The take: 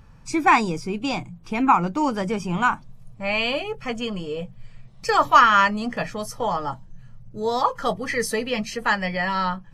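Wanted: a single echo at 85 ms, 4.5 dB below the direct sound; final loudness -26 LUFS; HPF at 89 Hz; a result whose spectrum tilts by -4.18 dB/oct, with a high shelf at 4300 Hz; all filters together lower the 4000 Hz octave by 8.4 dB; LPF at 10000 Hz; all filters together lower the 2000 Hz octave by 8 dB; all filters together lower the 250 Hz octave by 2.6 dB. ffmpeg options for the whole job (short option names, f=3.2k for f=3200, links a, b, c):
-af "highpass=89,lowpass=10k,equalizer=f=250:t=o:g=-3,equalizer=f=2k:t=o:g=-8.5,equalizer=f=4k:t=o:g=-3.5,highshelf=f=4.3k:g=-8,aecho=1:1:85:0.596,volume=-1.5dB"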